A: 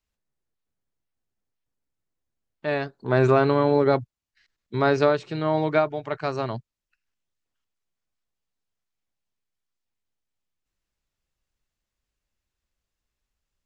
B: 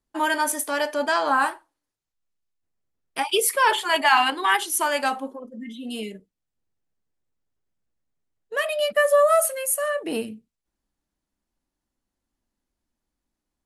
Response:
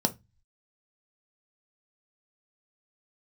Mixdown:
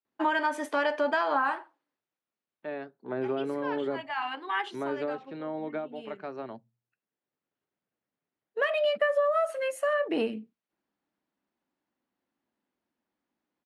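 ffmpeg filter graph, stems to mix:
-filter_complex "[0:a]acrossover=split=430[a][b];[b]acompressor=threshold=-27dB:ratio=4[c];[a][c]amix=inputs=2:normalize=0,volume=-10.5dB,asplit=3[d][e][f];[e]volume=-22.5dB[g];[1:a]adelay=50,volume=2dB[h];[f]apad=whole_len=604179[i];[h][i]sidechaincompress=threshold=-46dB:ratio=16:attack=11:release=1030[j];[2:a]atrim=start_sample=2205[k];[g][k]afir=irnorm=-1:irlink=0[l];[d][j][l]amix=inputs=3:normalize=0,highpass=210,lowpass=2.8k,acompressor=threshold=-23dB:ratio=6"

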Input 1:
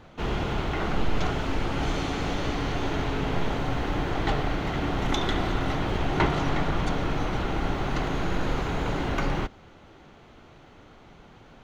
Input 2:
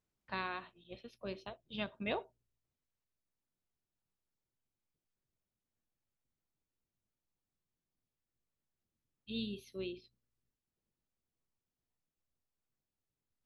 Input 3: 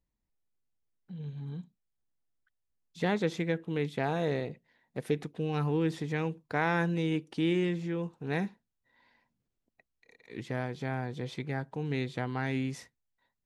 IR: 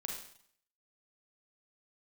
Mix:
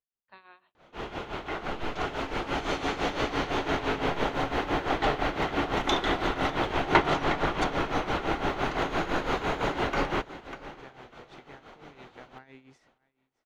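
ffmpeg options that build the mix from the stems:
-filter_complex "[0:a]adelay=750,volume=-3dB,asplit=2[a][b];[b]volume=-15.5dB[c];[1:a]volume=-10.5dB[d];[2:a]lowpass=7.7k,acompressor=threshold=-36dB:ratio=2.5,volume=-15.5dB,asplit=2[e][f];[f]volume=-23.5dB[g];[c][g]amix=inputs=2:normalize=0,aecho=0:1:597|1194|1791:1|0.19|0.0361[h];[a][d][e][h]amix=inputs=4:normalize=0,dynaudnorm=f=340:g=13:m=9dB,bass=f=250:g=-11,treble=f=4k:g=-4,tremolo=f=5.9:d=0.73"

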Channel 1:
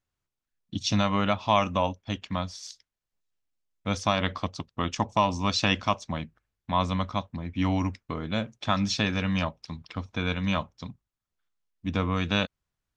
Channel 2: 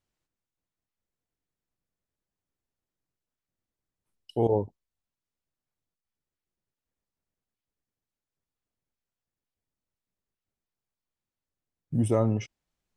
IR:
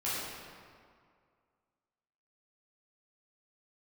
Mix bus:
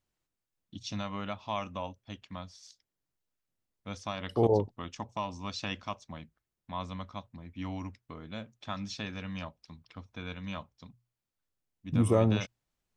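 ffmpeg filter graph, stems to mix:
-filter_complex "[0:a]bandreject=f=60:t=h:w=6,bandreject=f=120:t=h:w=6,volume=-12dB[a];[1:a]volume=-0.5dB[b];[a][b]amix=inputs=2:normalize=0"

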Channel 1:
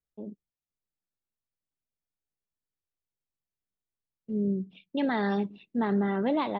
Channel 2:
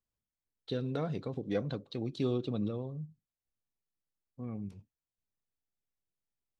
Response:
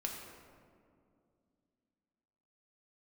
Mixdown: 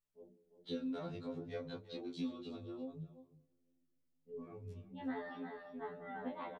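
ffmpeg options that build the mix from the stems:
-filter_complex "[0:a]lowpass=f=2.1k:p=1,volume=-10dB,asplit=3[a][b][c];[b]volume=-11.5dB[d];[c]volume=-5dB[e];[1:a]acompressor=threshold=-36dB:ratio=3,volume=2dB,asplit=4[f][g][h][i];[g]volume=-22dB[j];[h]volume=-15dB[k];[i]apad=whole_len=290647[l];[a][l]sidechaincompress=threshold=-42dB:ratio=8:attack=16:release=835[m];[2:a]atrim=start_sample=2205[n];[d][j]amix=inputs=2:normalize=0[o];[o][n]afir=irnorm=-1:irlink=0[p];[e][k]amix=inputs=2:normalize=0,aecho=0:1:350:1[q];[m][f][p][q]amix=inputs=4:normalize=0,flanger=delay=18.5:depth=4.4:speed=0.67,afftfilt=real='re*2*eq(mod(b,4),0)':imag='im*2*eq(mod(b,4),0)':win_size=2048:overlap=0.75"

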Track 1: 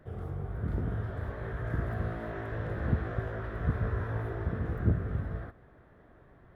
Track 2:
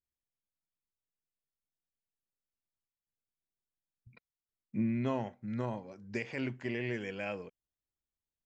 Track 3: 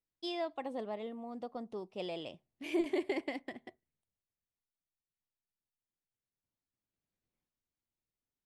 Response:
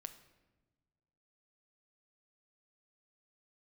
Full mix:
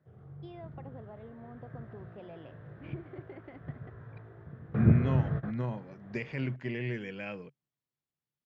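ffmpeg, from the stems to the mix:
-filter_complex "[0:a]volume=2.5dB[a];[1:a]adynamicequalizer=threshold=0.00282:dfrequency=710:dqfactor=1.2:tfrequency=710:tqfactor=1.2:attack=5:release=100:ratio=0.375:range=3:mode=cutabove:tftype=bell,volume=0dB,asplit=2[b][c];[2:a]lowpass=1.9k,acompressor=threshold=-42dB:ratio=4,adelay=200,volume=-4dB[d];[c]apad=whole_len=289229[e];[a][e]sidechaingate=range=-19dB:threshold=-52dB:ratio=16:detection=peak[f];[f][b][d]amix=inputs=3:normalize=0,highpass=100,lowpass=4.2k,equalizer=f=140:t=o:w=0.41:g=13"

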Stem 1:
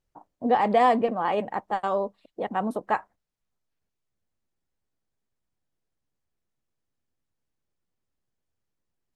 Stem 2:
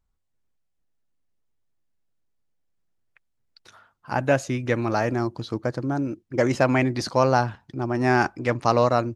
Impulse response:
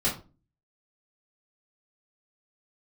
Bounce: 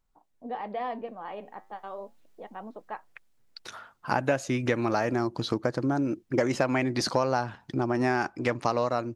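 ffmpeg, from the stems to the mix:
-filter_complex "[0:a]lowpass=f=4.7k:w=0.5412,lowpass=f=4.7k:w=1.3066,flanger=delay=1.5:depth=9.6:regen=-82:speed=0.35:shape=triangular,volume=-8.5dB[a];[1:a]dynaudnorm=f=480:g=7:m=15dB,volume=2.5dB[b];[a][b]amix=inputs=2:normalize=0,equalizer=f=70:w=0.82:g=-9,acompressor=threshold=-24dB:ratio=4"

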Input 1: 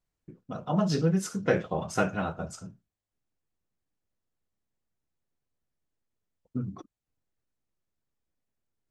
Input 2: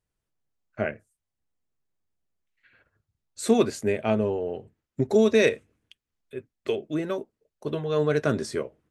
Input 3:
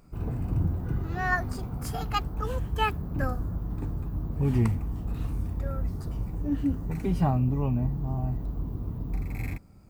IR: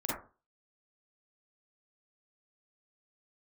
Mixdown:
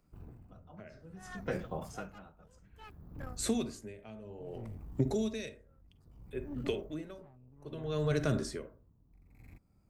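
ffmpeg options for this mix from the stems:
-filter_complex "[0:a]volume=-8.5dB,asplit=2[a][b];[b]volume=-20.5dB[c];[1:a]volume=-2dB,asplit=3[d][e][f];[e]volume=-13.5dB[g];[2:a]aeval=exprs='(tanh(14.1*val(0)+0.5)-tanh(0.5))/14.1':c=same,volume=-12.5dB[h];[f]apad=whole_len=392830[i];[a][i]sidechaincompress=threshold=-32dB:ratio=8:attack=8.9:release=746[j];[3:a]atrim=start_sample=2205[k];[c][g]amix=inputs=2:normalize=0[l];[l][k]afir=irnorm=-1:irlink=0[m];[j][d][h][m]amix=inputs=4:normalize=0,acrossover=split=190|3000[n][o][p];[o]acompressor=threshold=-30dB:ratio=6[q];[n][q][p]amix=inputs=3:normalize=0,aeval=exprs='val(0)*pow(10,-19*(0.5-0.5*cos(2*PI*0.61*n/s))/20)':c=same"

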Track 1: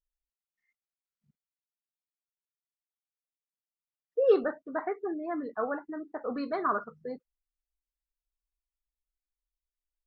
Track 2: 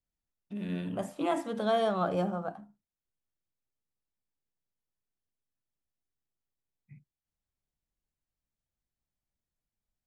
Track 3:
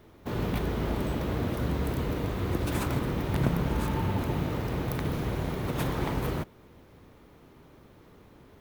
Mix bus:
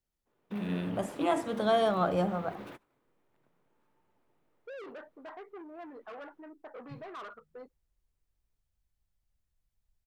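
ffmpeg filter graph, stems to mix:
-filter_complex "[0:a]aeval=exprs='(tanh(56.2*val(0)+0.1)-tanh(0.1))/56.2':c=same,adelay=500,volume=-4.5dB[a];[1:a]asubboost=boost=4:cutoff=110,volume=2dB,asplit=2[b][c];[2:a]highpass=f=99:w=0.5412,highpass=f=99:w=1.3066,acontrast=77,volume=-15dB[d];[c]apad=whole_len=379518[e];[d][e]sidechaingate=range=-33dB:threshold=-57dB:ratio=16:detection=peak[f];[a][f]amix=inputs=2:normalize=0,bass=f=250:g=-14,treble=f=4k:g=-11,alimiter=level_in=13.5dB:limit=-24dB:level=0:latency=1:release=31,volume=-13.5dB,volume=0dB[g];[b][g]amix=inputs=2:normalize=0"

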